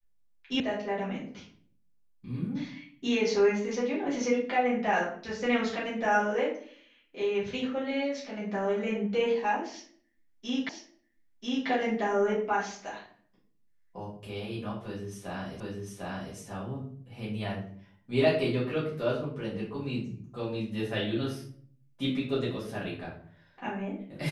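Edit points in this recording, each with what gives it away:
0:00.60: cut off before it has died away
0:10.69: the same again, the last 0.99 s
0:15.60: the same again, the last 0.75 s

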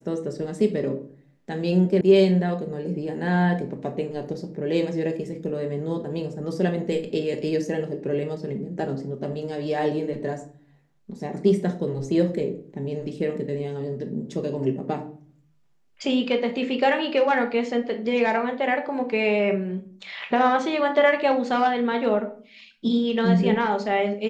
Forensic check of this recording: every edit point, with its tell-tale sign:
0:02.01: cut off before it has died away

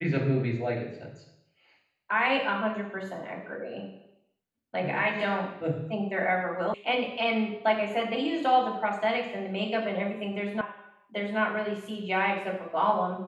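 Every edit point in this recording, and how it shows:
0:06.74: cut off before it has died away
0:10.61: cut off before it has died away

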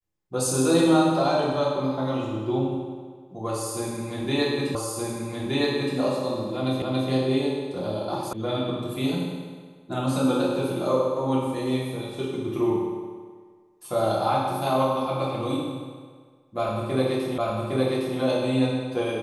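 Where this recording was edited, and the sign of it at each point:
0:04.75: the same again, the last 1.22 s
0:06.82: the same again, the last 0.28 s
0:08.33: cut off before it has died away
0:17.38: the same again, the last 0.81 s

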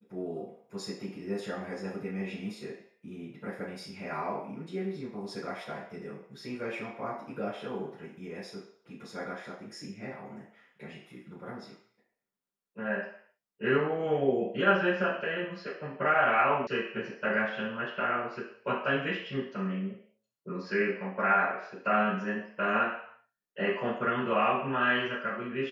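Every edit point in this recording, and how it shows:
0:16.67: cut off before it has died away

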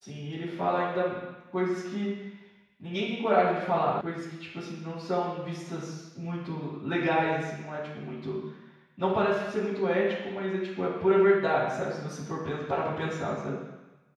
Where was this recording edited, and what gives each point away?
0:04.01: cut off before it has died away

